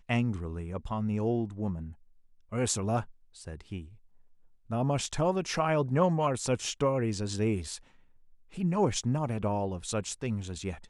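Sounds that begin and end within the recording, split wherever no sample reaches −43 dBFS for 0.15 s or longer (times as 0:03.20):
0:02.52–0:03.10
0:03.36–0:03.86
0:04.70–0:07.78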